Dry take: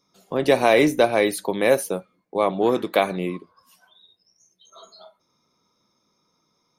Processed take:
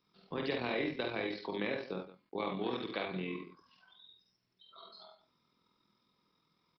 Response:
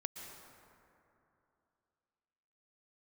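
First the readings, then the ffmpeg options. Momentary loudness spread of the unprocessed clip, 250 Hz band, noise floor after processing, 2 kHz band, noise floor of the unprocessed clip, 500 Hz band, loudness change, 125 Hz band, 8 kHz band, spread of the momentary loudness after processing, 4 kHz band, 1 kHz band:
13 LU, −14.5 dB, −79 dBFS, −14.0 dB, −70 dBFS, −18.5 dB, −16.5 dB, −12.5 dB, below −40 dB, 18 LU, −11.5 dB, −17.5 dB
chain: -filter_complex "[0:a]equalizer=frequency=610:width_type=o:width=0.72:gain=-8,acrossover=split=540|1600[link_01][link_02][link_03];[link_01]acompressor=threshold=-32dB:ratio=4[link_04];[link_02]acompressor=threshold=-38dB:ratio=4[link_05];[link_03]acompressor=threshold=-35dB:ratio=4[link_06];[link_04][link_05][link_06]amix=inputs=3:normalize=0,aecho=1:1:49|74|170:0.631|0.447|0.178,tremolo=f=42:d=0.462,acrusher=bits=11:mix=0:aa=0.000001,aresample=11025,aresample=44100,volume=-5dB"

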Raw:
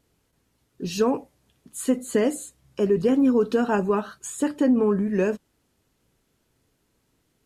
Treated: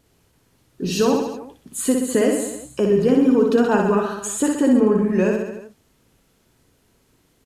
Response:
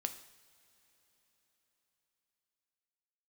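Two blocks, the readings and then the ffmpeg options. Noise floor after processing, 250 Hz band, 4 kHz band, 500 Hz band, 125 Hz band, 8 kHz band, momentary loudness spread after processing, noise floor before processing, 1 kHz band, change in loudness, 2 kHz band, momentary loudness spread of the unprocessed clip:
−62 dBFS, +4.5 dB, +6.5 dB, +4.5 dB, +5.0 dB, +8.0 dB, 14 LU, −71 dBFS, +4.5 dB, +4.5 dB, +5.0 dB, 15 LU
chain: -filter_complex "[0:a]asplit=2[link_01][link_02];[link_02]acompressor=threshold=-29dB:ratio=6,volume=1dB[link_03];[link_01][link_03]amix=inputs=2:normalize=0,aecho=1:1:60|126|198.6|278.5|366.3:0.631|0.398|0.251|0.158|0.1"

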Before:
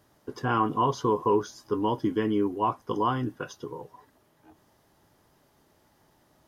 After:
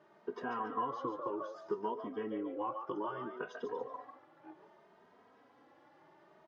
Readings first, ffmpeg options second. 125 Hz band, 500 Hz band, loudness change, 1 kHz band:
−23.0 dB, −10.5 dB, −12.5 dB, −11.0 dB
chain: -filter_complex "[0:a]acompressor=threshold=-37dB:ratio=6,highpass=270,lowpass=2200,asplit=5[link_01][link_02][link_03][link_04][link_05];[link_02]adelay=143,afreqshift=120,volume=-8dB[link_06];[link_03]adelay=286,afreqshift=240,volume=-18.2dB[link_07];[link_04]adelay=429,afreqshift=360,volume=-28.3dB[link_08];[link_05]adelay=572,afreqshift=480,volume=-38.5dB[link_09];[link_01][link_06][link_07][link_08][link_09]amix=inputs=5:normalize=0,asplit=2[link_10][link_11];[link_11]adelay=2.9,afreqshift=0.64[link_12];[link_10][link_12]amix=inputs=2:normalize=1,volume=5.5dB"

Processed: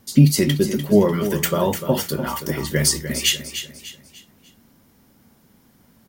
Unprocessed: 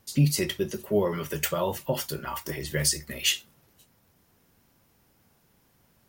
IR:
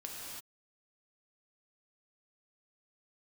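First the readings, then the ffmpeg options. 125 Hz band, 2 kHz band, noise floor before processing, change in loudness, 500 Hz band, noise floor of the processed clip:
+9.0 dB, +5.5 dB, −66 dBFS, +8.0 dB, +8.0 dB, −57 dBFS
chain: -af "equalizer=frequency=230:width=1.9:gain=9.5,bandreject=frequency=2600:width=15,aecho=1:1:297|594|891|1188:0.299|0.116|0.0454|0.0177,volume=6dB"

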